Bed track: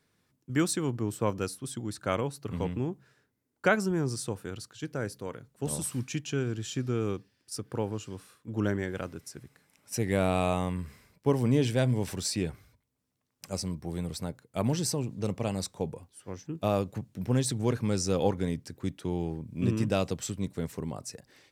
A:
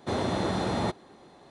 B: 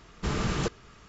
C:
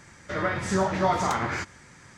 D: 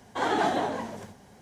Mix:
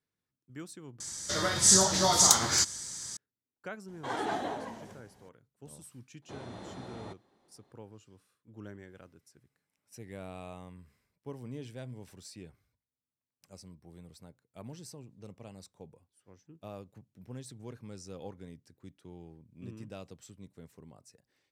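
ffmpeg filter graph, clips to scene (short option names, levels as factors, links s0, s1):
-filter_complex "[0:a]volume=0.133[s0];[3:a]aexciter=amount=9.4:drive=7.2:freq=3600[s1];[s0]asplit=2[s2][s3];[s2]atrim=end=1.004[s4];[s1]atrim=end=2.17,asetpts=PTS-STARTPTS,volume=0.631[s5];[s3]atrim=start=3.166[s6];[4:a]atrim=end=1.41,asetpts=PTS-STARTPTS,volume=0.398,afade=t=in:d=0.004:c=hsin,afade=t=out:st=1.406:d=0.004:c=hsin,adelay=3880[s7];[1:a]atrim=end=1.5,asetpts=PTS-STARTPTS,volume=0.141,afade=t=in:d=0.004:c=hsin,afade=t=out:st=1.496:d=0.004:c=hsin,adelay=6220[s8];[s4][s5]acrossfade=d=0.004:c1=hsin:c2=hsin[s9];[s9][s6]acrossfade=d=0.004:c1=hsin:c2=hsin[s10];[s10][s7][s8]amix=inputs=3:normalize=0"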